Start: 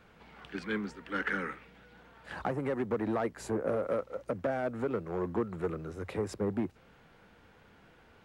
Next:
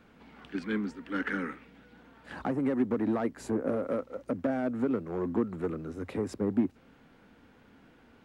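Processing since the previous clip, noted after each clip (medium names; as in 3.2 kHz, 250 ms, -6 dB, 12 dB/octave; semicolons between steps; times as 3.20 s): peaking EQ 260 Hz +11.5 dB 0.58 oct; trim -1.5 dB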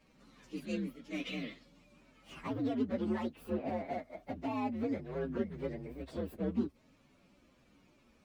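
frequency axis rescaled in octaves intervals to 128%; trim -3.5 dB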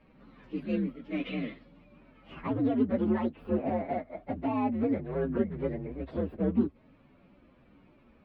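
distance through air 440 m; trim +7.5 dB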